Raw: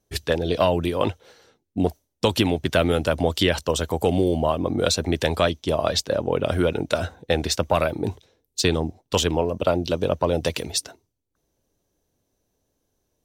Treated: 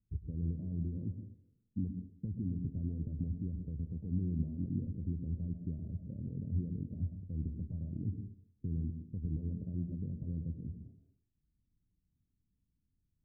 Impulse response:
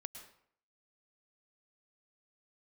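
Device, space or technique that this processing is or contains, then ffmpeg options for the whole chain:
club heard from the street: -filter_complex "[0:a]alimiter=limit=-16.5dB:level=0:latency=1:release=102,lowpass=frequency=210:width=0.5412,lowpass=frequency=210:width=1.3066[link_01];[1:a]atrim=start_sample=2205[link_02];[link_01][link_02]afir=irnorm=-1:irlink=0,volume=1dB"

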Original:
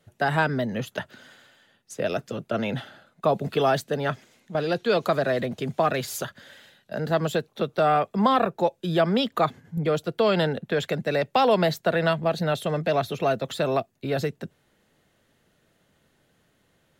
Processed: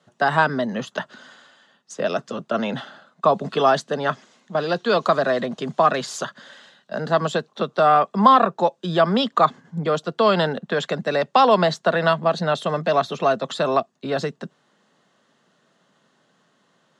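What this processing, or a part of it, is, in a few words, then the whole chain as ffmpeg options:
television speaker: -af "highpass=frequency=170:width=0.5412,highpass=frequency=170:width=1.3066,equalizer=frequency=320:width_type=q:width=4:gain=-5,equalizer=frequency=470:width_type=q:width=4:gain=-3,equalizer=frequency=1100:width_type=q:width=4:gain=7,equalizer=frequency=2300:width_type=q:width=4:gain=-7,lowpass=frequency=7600:width=0.5412,lowpass=frequency=7600:width=1.3066,volume=4.5dB"

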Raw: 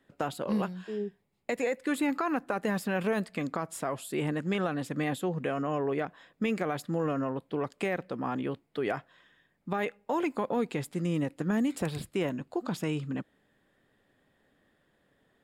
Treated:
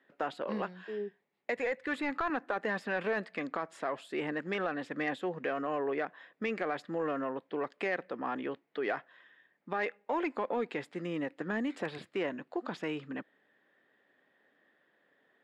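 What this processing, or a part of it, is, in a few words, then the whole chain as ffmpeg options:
intercom: -filter_complex "[0:a]highpass=310,lowpass=3600,equalizer=frequency=1800:width_type=o:width=0.45:gain=5.5,asoftclip=type=tanh:threshold=-19.5dB,asettb=1/sr,asplit=3[link_01][link_02][link_03];[link_01]atrim=end=1.564[link_04];[link_02]atrim=start=1.56:end=2.3,asetpts=PTS-STARTPTS,afade=type=in:duration=0.004:curve=qsin,afade=type=out:start_time=0.736:duration=0.004:curve=qsin,lowshelf=frequency=180:width_type=q:width=1.5:gain=12[link_05];[link_03]atrim=start=2.296[link_06];[link_04][link_05]acrossfade=duration=0.004:curve1=hsin:curve2=qsin[link_07];[link_07][link_06]acrossfade=duration=0.004:curve1=qsin:curve2=hsin,volume=-1dB"

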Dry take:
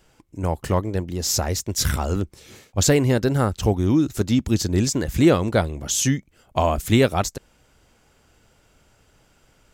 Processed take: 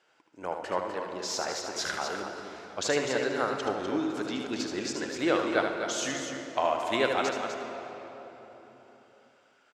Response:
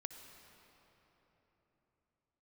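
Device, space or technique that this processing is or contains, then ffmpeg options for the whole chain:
station announcement: -filter_complex "[0:a]highpass=470,lowpass=4700,equalizer=frequency=1500:width_type=o:width=0.33:gain=4.5,aecho=1:1:75.8|250.7:0.501|0.447[link_01];[1:a]atrim=start_sample=2205[link_02];[link_01][link_02]afir=irnorm=-1:irlink=0,volume=-1.5dB"

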